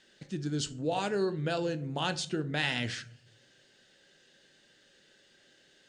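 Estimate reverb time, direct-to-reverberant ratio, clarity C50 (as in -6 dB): 0.55 s, 9.5 dB, 17.5 dB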